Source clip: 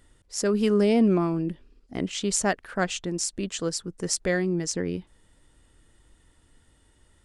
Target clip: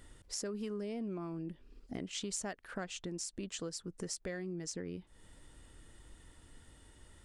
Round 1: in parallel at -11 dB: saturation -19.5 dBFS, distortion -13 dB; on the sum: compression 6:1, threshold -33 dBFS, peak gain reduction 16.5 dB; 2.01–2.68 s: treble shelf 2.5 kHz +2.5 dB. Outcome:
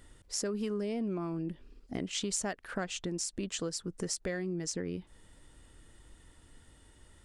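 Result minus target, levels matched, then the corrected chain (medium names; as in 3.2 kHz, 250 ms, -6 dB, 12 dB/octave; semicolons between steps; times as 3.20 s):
compression: peak gain reduction -5.5 dB
in parallel at -11 dB: saturation -19.5 dBFS, distortion -13 dB; on the sum: compression 6:1, threshold -39.5 dBFS, peak gain reduction 21.5 dB; 2.01–2.68 s: treble shelf 2.5 kHz +2.5 dB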